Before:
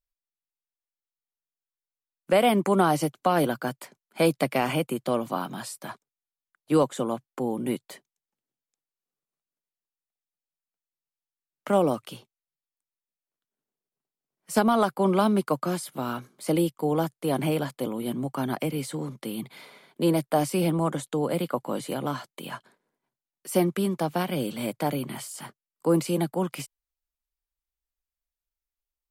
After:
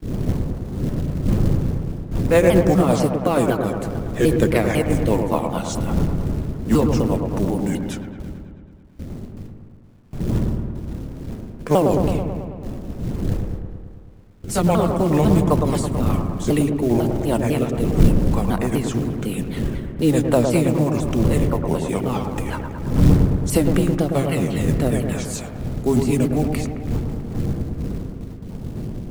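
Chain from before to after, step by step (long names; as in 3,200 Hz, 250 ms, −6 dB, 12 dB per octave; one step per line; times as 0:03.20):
pitch shifter swept by a sawtooth −6 semitones, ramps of 250 ms
wind on the microphone 180 Hz −32 dBFS
noise gate with hold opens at −36 dBFS
in parallel at −1 dB: downward compressor 6 to 1, threshold −35 dBFS, peak gain reduction 19.5 dB
on the sum: rotating-speaker cabinet horn 5 Hz
log-companded quantiser 6 bits
on a send: delay with a low-pass on its return 109 ms, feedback 69%, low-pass 1,600 Hz, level −5 dB
on the sum: level +5.5 dB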